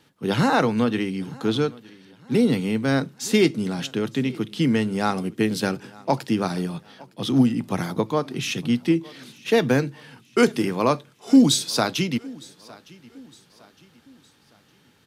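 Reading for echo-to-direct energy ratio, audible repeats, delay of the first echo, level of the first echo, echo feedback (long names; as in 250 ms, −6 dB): −22.0 dB, 2, 910 ms, −23.0 dB, 42%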